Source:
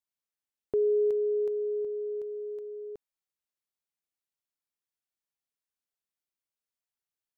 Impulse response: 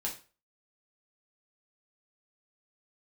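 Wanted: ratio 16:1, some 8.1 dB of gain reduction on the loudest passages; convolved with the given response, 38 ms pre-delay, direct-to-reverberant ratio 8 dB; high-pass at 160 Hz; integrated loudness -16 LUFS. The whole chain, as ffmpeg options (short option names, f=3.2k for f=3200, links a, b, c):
-filter_complex "[0:a]highpass=160,acompressor=threshold=-31dB:ratio=16,asplit=2[a][b];[1:a]atrim=start_sample=2205,adelay=38[c];[b][c]afir=irnorm=-1:irlink=0,volume=-10dB[d];[a][d]amix=inputs=2:normalize=0,volume=16dB"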